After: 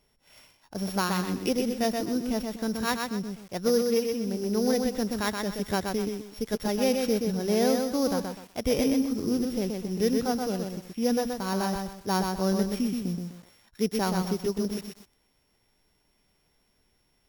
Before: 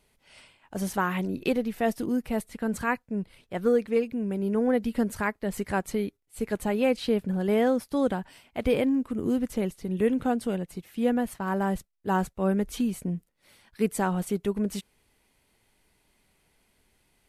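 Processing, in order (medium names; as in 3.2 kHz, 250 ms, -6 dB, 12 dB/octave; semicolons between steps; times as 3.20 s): sorted samples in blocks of 8 samples; bit-crushed delay 126 ms, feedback 35%, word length 8-bit, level -4 dB; trim -1.5 dB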